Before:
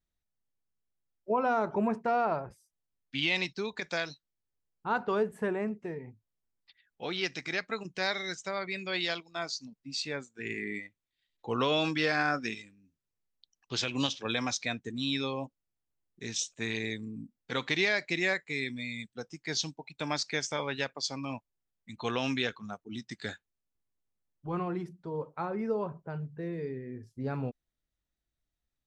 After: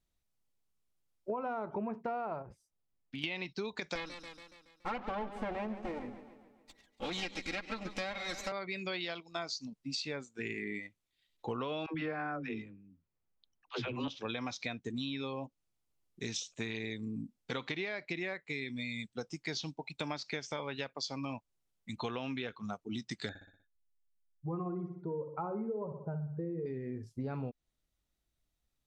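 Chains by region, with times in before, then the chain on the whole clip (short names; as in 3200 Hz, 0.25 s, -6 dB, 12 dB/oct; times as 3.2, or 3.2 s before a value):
2.42–3.24 high shelf 2200 Hz -11 dB + compressor 4:1, threshold -43 dBFS + hard clip -35.5 dBFS
3.95–8.52 minimum comb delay 3.7 ms + warbling echo 0.141 s, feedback 55%, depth 97 cents, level -14.5 dB
11.86–14.08 LPF 2000 Hz + dispersion lows, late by 92 ms, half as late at 360 Hz
23.29–26.66 spectral contrast raised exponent 1.6 + LPF 2700 Hz 6 dB/oct + feedback echo 61 ms, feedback 50%, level -10 dB
whole clip: treble ducked by the level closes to 2800 Hz, closed at -26.5 dBFS; bell 1700 Hz -4.5 dB 0.4 oct; compressor 6:1, threshold -39 dBFS; gain +4 dB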